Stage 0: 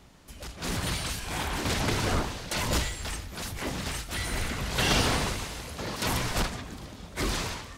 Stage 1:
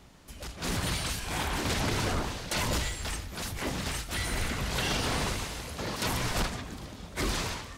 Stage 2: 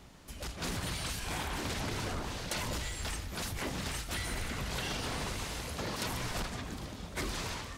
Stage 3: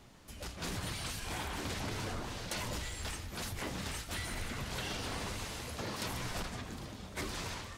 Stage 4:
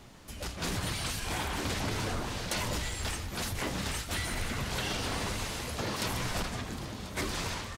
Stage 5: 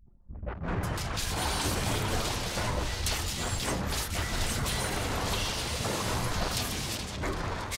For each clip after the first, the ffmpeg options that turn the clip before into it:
-af "alimiter=limit=0.1:level=0:latency=1:release=88"
-af "acompressor=threshold=0.0224:ratio=6"
-af "flanger=delay=8.3:depth=2.5:regen=-55:speed=0.88:shape=triangular,volume=1.19"
-af "aecho=1:1:1039:0.158,volume=1.88"
-filter_complex "[0:a]acrossover=split=250|2100[s0][s1][s2];[s1]adelay=60[s3];[s2]adelay=550[s4];[s0][s3][s4]amix=inputs=3:normalize=0,anlmdn=0.0631,volume=1.58"

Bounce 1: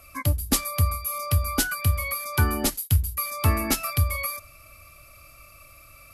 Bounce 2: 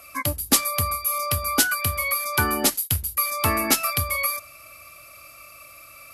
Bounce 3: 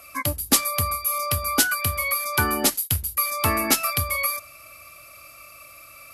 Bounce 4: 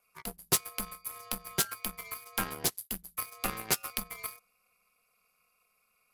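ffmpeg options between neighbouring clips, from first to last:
-af "highpass=f=360:p=1,volume=1.88"
-af anull
-af "aeval=exprs='0.631*(cos(1*acos(clip(val(0)/0.631,-1,1)))-cos(1*PI/2))+0.01*(cos(3*acos(clip(val(0)/0.631,-1,1)))-cos(3*PI/2))+0.0708*(cos(5*acos(clip(val(0)/0.631,-1,1)))-cos(5*PI/2))+0.00447*(cos(6*acos(clip(val(0)/0.631,-1,1)))-cos(6*PI/2))+0.126*(cos(7*acos(clip(val(0)/0.631,-1,1)))-cos(7*PI/2))':c=same,aeval=exprs='val(0)*sin(2*PI*110*n/s)':c=same,volume=0.501"

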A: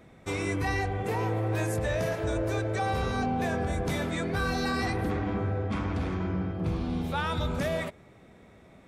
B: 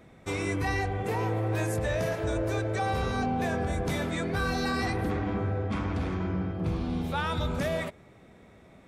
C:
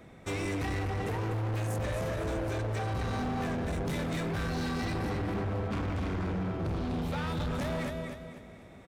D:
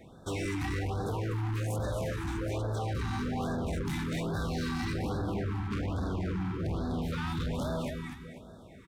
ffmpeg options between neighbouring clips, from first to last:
-af anull
-filter_complex "[0:a]acrossover=split=360[s0][s1];[s1]acompressor=threshold=0.02:ratio=6[s2];[s0][s2]amix=inputs=2:normalize=0,aecho=1:1:248|496|744|992:0.447|0.17|0.0645|0.0245,asoftclip=type=hard:threshold=0.0266,volume=1.19"
-af "afftfilt=real='re*(1-between(b*sr/1024,500*pow(2500/500,0.5+0.5*sin(2*PI*1.2*pts/sr))/1.41,500*pow(2500/500,0.5+0.5*sin(2*PI*1.2*pts/sr))*1.41))':imag='im*(1-between(b*sr/1024,500*pow(2500/500,0.5+0.5*sin(2*PI*1.2*pts/sr))/1.41,500*pow(2500/500,0.5+0.5*sin(2*PI*1.2*pts/sr))*1.41))':win_size=1024:overlap=0.75"

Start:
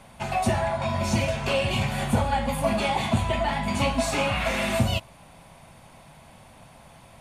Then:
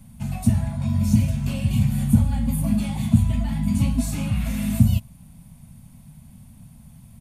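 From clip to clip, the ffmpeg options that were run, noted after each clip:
-af "firequalizer=gain_entry='entry(230,0);entry(360,-24);entry(13000,1)':delay=0.05:min_phase=1,volume=2.51"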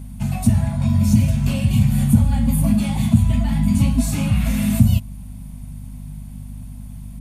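-filter_complex "[0:a]asplit=2[s0][s1];[s1]alimiter=limit=0.188:level=0:latency=1:release=161,volume=0.891[s2];[s0][s2]amix=inputs=2:normalize=0,aeval=exprs='val(0)+0.0224*(sin(2*PI*50*n/s)+sin(2*PI*2*50*n/s)/2+sin(2*PI*3*50*n/s)/3+sin(2*PI*4*50*n/s)/4+sin(2*PI*5*50*n/s)/5)':c=same"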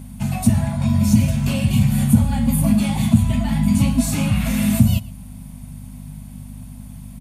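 -filter_complex "[0:a]lowshelf=f=93:g=-9.5,asplit=2[s0][s1];[s1]adelay=116.6,volume=0.0891,highshelf=f=4000:g=-2.62[s2];[s0][s2]amix=inputs=2:normalize=0,volume=1.41"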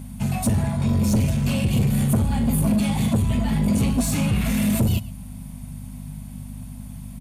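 -af "asoftclip=type=tanh:threshold=0.188"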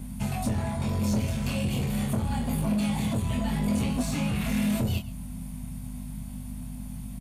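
-filter_complex "[0:a]acrossover=split=450|6000[s0][s1][s2];[s0]acompressor=threshold=0.0562:ratio=4[s3];[s1]acompressor=threshold=0.0224:ratio=4[s4];[s2]acompressor=threshold=0.00708:ratio=4[s5];[s3][s4][s5]amix=inputs=3:normalize=0,asplit=2[s6][s7];[s7]adelay=24,volume=0.562[s8];[s6][s8]amix=inputs=2:normalize=0,volume=0.75"

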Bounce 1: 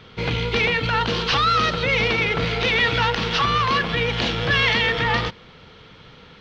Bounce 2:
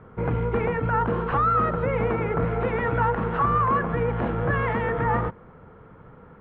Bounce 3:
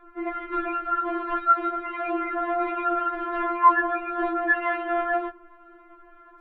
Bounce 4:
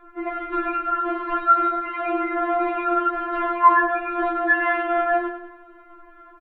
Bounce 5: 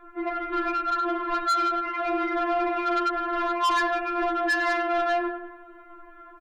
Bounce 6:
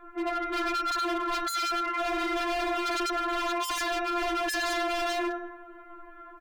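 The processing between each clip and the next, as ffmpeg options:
-af "lowpass=f=1400:w=0.5412,lowpass=f=1400:w=1.3066"
-af "afftfilt=real='re*4*eq(mod(b,16),0)':imag='im*4*eq(mod(b,16),0)':win_size=2048:overlap=0.75,volume=1.5"
-filter_complex "[0:a]asplit=2[s0][s1];[s1]adelay=43,volume=0.282[s2];[s0][s2]amix=inputs=2:normalize=0,asplit=2[s3][s4];[s4]aecho=0:1:97|194|291|388|485:0.316|0.158|0.0791|0.0395|0.0198[s5];[s3][s5]amix=inputs=2:normalize=0,volume=1.33"
-af "asoftclip=type=tanh:threshold=0.1"
-af "aeval=exprs='0.0562*(abs(mod(val(0)/0.0562+3,4)-2)-1)':c=same,bandreject=f=189.6:t=h:w=4,bandreject=f=379.2:t=h:w=4,bandreject=f=568.8:t=h:w=4,bandreject=f=758.4:t=h:w=4,bandreject=f=948:t=h:w=4,bandreject=f=1137.6:t=h:w=4,bandreject=f=1327.2:t=h:w=4,bandreject=f=1516.8:t=h:w=4,bandreject=f=1706.4:t=h:w=4,bandreject=f=1896:t=h:w=4,bandreject=f=2085.6:t=h:w=4,bandreject=f=2275.2:t=h:w=4,bandreject=f=2464.8:t=h:w=4,bandreject=f=2654.4:t=h:w=4,bandreject=f=2844:t=h:w=4,bandreject=f=3033.6:t=h:w=4,bandreject=f=3223.2:t=h:w=4,bandreject=f=3412.8:t=h:w=4,bandreject=f=3602.4:t=h:w=4,bandreject=f=3792:t=h:w=4,bandreject=f=3981.6:t=h:w=4,bandreject=f=4171.2:t=h:w=4,bandreject=f=4360.8:t=h:w=4,bandreject=f=4550.4:t=h:w=4,bandreject=f=4740:t=h:w=4,bandreject=f=4929.6:t=h:w=4,bandreject=f=5119.2:t=h:w=4,bandreject=f=5308.8:t=h:w=4,bandreject=f=5498.4:t=h:w=4,bandreject=f=5688:t=h:w=4,bandreject=f=5877.6:t=h:w=4,bandreject=f=6067.2:t=h:w=4,bandreject=f=6256.8:t=h:w=4,bandreject=f=6446.4:t=h:w=4,bandreject=f=6636:t=h:w=4"

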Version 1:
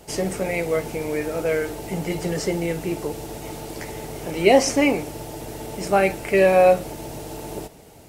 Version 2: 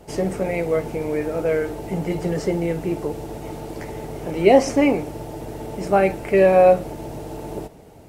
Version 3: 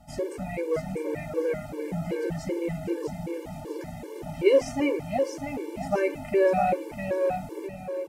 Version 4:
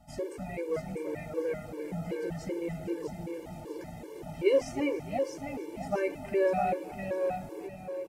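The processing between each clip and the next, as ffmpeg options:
-af "highshelf=f=2000:g=-10.5,volume=1.33"
-af "aecho=1:1:652|1304|1956|2608|3260:0.531|0.202|0.0767|0.0291|0.0111,afftfilt=real='re*gt(sin(2*PI*2.6*pts/sr)*(1-2*mod(floor(b*sr/1024/300),2)),0)':imag='im*gt(sin(2*PI*2.6*pts/sr)*(1-2*mod(floor(b*sr/1024/300),2)),0)':win_size=1024:overlap=0.75,volume=0.562"
-af "aecho=1:1:304|608|912:0.119|0.0416|0.0146,volume=0.562"

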